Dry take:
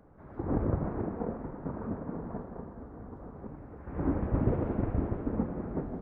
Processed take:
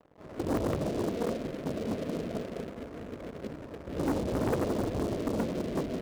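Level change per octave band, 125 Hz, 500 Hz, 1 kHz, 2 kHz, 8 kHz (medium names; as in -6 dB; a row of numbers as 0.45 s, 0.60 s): -3.5 dB, +5.0 dB, +2.5 dB, +7.0 dB, no reading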